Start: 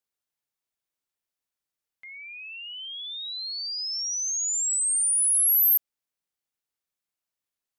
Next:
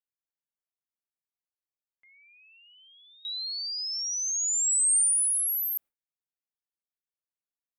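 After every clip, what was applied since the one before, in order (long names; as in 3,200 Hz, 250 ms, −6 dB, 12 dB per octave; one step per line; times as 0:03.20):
noise gate with hold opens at −32 dBFS
parametric band 5,400 Hz −10 dB 1.8 octaves
compressor whose output falls as the input rises −30 dBFS, ratio −1
level +5 dB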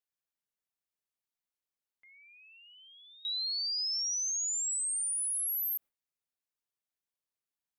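brickwall limiter −30 dBFS, peak gain reduction 11 dB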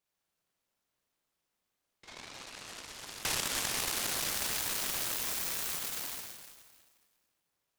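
dense smooth reverb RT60 3.4 s, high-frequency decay 0.5×, DRR −4.5 dB
downward compressor 10 to 1, threshold −36 dBFS, peak gain reduction 11 dB
short delay modulated by noise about 1,500 Hz, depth 0.11 ms
level +5.5 dB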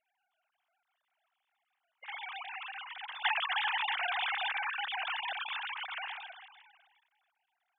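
three sine waves on the formant tracks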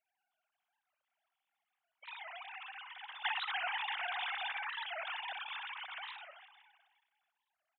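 on a send: repeating echo 62 ms, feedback 39%, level −12 dB
on the sum: wow of a warped record 45 rpm, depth 250 cents
level −5.5 dB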